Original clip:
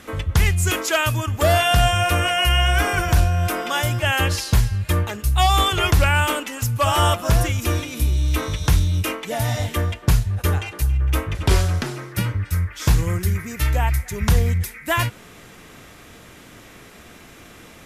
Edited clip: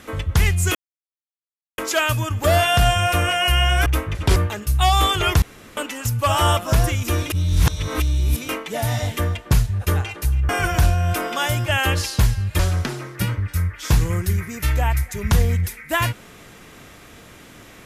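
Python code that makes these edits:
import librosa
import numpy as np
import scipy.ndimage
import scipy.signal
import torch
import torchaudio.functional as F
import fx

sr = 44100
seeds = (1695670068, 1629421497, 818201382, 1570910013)

y = fx.edit(x, sr, fx.insert_silence(at_s=0.75, length_s=1.03),
    fx.swap(start_s=2.83, length_s=2.1, other_s=11.06, other_length_s=0.5),
    fx.room_tone_fill(start_s=5.99, length_s=0.35),
    fx.reverse_span(start_s=7.87, length_s=1.19), tone=tone)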